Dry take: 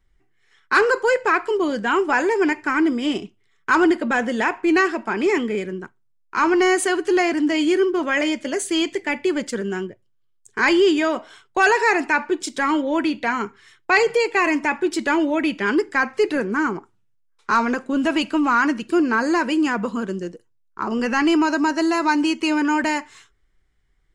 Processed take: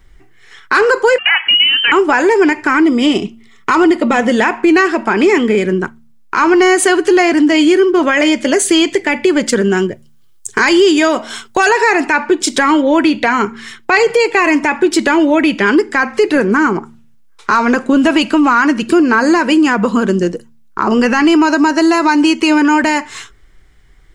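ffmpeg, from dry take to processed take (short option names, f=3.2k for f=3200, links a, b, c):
-filter_complex "[0:a]asettb=1/sr,asplit=3[a][b][c];[a]atrim=end=1.184[d];[b]atrim=start=1.18:end=1.92,asetpts=PTS-STARTPTS,afade=t=in:d=0.004:c=qsin,afade=t=out:st=0.736:d=0.004:c=qsin,lowpass=f=2.8k:t=q:w=0.5098,lowpass=f=2.8k:t=q:w=0.6013,lowpass=f=2.8k:t=q:w=0.9,lowpass=f=2.8k:t=q:w=2.563,afreqshift=-3300[e];[c]atrim=start=1.916[f];[d][e]acrossfade=d=0.004:c1=hsin:c2=qsin[g];[g][f]acrossfade=d=0.004:c1=qsin:c2=hsin,asettb=1/sr,asplit=3[h][i][j];[h]atrim=end=2.844[k];[i]atrim=start=2.84:end=4.3,asetpts=PTS-STARTPTS,afade=t=in:d=0.004:c=qsin,afade=t=out:st=1.456:d=0.004:c=qsin,asuperstop=centerf=1600:order=4:qfactor=6.6[l];[j]atrim=start=4.296[m];[k][l]acrossfade=d=0.004:c1=hsin:c2=qsin[n];[n][m]acrossfade=d=0.004:c1=qsin:c2=hsin,asettb=1/sr,asplit=3[o][p][q];[o]atrim=end=9.774[r];[p]atrim=start=9.77:end=11.69,asetpts=PTS-STARTPTS,afade=t=in:d=0.004:c=qsin,afade=t=out:st=1.916:d=0.004:c=qsin,bass=f=250:g=0,treble=f=4k:g=7[s];[q]atrim=start=11.686[t];[r][s]acrossfade=d=0.004:c1=hsin:c2=qsin[u];[u][t]acrossfade=d=0.004:c1=qsin:c2=hsin,bandreject=f=76.04:t=h:w=4,bandreject=f=152.08:t=h:w=4,bandreject=f=228.12:t=h:w=4,acompressor=threshold=-30dB:ratio=3,alimiter=level_in=20dB:limit=-1dB:release=50:level=0:latency=1,volume=-1dB"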